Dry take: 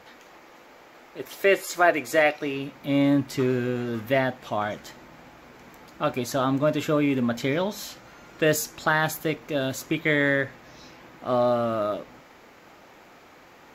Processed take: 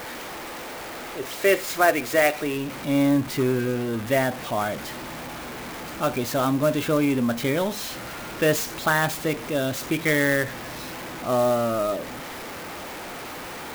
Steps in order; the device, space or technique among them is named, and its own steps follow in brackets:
early CD player with a faulty converter (converter with a step at zero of −31 dBFS; converter with an unsteady clock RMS 0.027 ms)

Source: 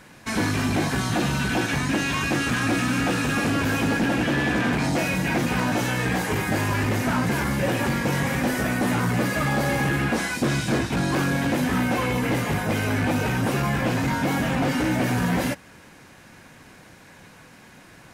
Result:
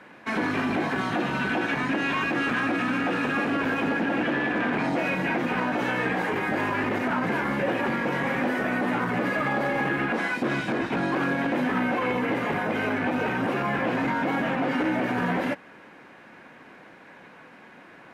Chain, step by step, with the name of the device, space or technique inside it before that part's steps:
DJ mixer with the lows and highs turned down (three-way crossover with the lows and the highs turned down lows −19 dB, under 200 Hz, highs −20 dB, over 3,000 Hz; brickwall limiter −19 dBFS, peak gain reduction 6.5 dB)
level +2 dB

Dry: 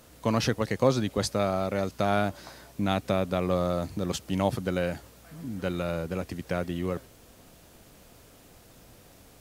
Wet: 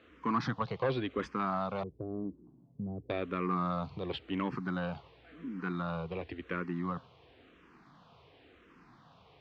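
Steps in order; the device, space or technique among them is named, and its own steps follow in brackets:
0:01.83–0:03.10: inverse Chebyshev low-pass filter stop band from 2,400 Hz, stop band 80 dB
barber-pole phaser into a guitar amplifier (frequency shifter mixed with the dry sound −0.94 Hz; soft clipping −21 dBFS, distortion −15 dB; loudspeaker in its box 94–3,500 Hz, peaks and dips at 100 Hz −7 dB, 210 Hz −4 dB, 580 Hz −8 dB, 1,100 Hz +7 dB)

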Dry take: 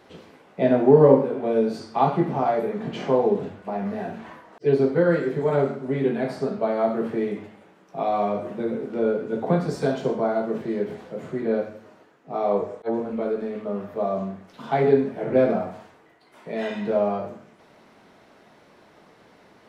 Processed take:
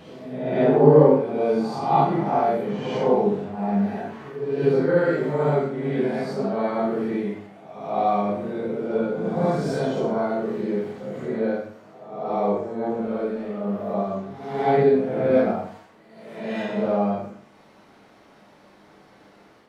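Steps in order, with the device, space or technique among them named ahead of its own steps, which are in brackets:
reverse reverb (reversed playback; convolution reverb RT60 0.90 s, pre-delay 19 ms, DRR −6 dB; reversed playback)
level −6 dB

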